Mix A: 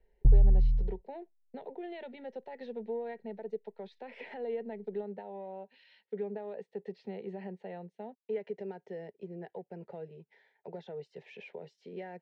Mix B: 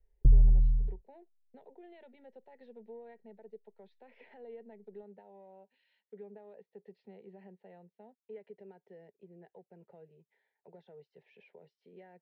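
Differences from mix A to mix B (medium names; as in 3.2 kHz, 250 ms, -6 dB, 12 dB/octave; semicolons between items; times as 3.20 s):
speech -11.5 dB; master: add distance through air 120 m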